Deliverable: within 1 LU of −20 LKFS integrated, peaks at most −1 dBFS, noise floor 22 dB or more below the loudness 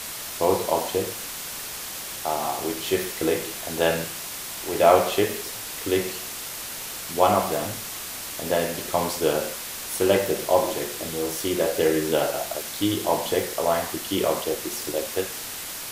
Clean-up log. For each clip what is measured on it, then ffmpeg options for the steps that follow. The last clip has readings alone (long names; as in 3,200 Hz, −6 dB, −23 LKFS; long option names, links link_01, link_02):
background noise floor −35 dBFS; target noise floor −47 dBFS; integrated loudness −25.0 LKFS; sample peak −3.5 dBFS; target loudness −20.0 LKFS
→ -af "afftdn=noise_reduction=12:noise_floor=-35"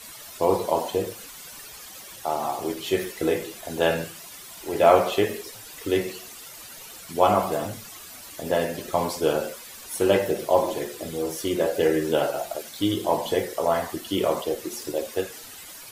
background noise floor −43 dBFS; target noise floor −47 dBFS
→ -af "afftdn=noise_reduction=6:noise_floor=-43"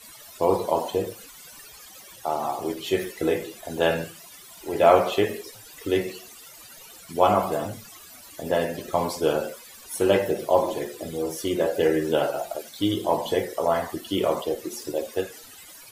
background noise floor −46 dBFS; target noise floor −48 dBFS
→ -af "afftdn=noise_reduction=6:noise_floor=-46"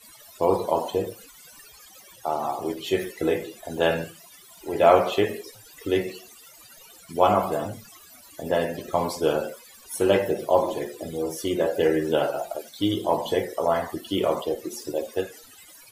background noise floor −50 dBFS; integrated loudness −25.0 LKFS; sample peak −3.5 dBFS; target loudness −20.0 LKFS
→ -af "volume=5dB,alimiter=limit=-1dB:level=0:latency=1"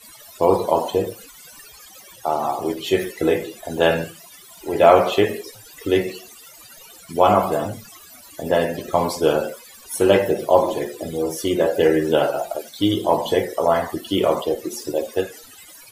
integrated loudness −20.5 LKFS; sample peak −1.0 dBFS; background noise floor −45 dBFS